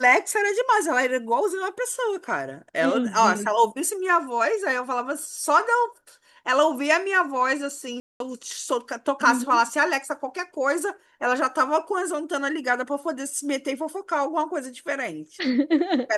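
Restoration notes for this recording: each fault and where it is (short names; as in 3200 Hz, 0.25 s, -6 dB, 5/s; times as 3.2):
8–8.2 gap 0.202 s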